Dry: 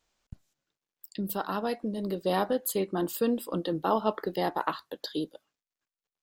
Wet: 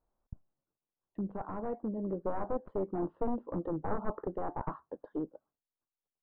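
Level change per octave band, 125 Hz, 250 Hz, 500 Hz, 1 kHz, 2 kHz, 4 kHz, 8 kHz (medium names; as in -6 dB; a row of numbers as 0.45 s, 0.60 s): -3.5 dB, -5.5 dB, -6.5 dB, -8.5 dB, -13.5 dB, under -40 dB, under -35 dB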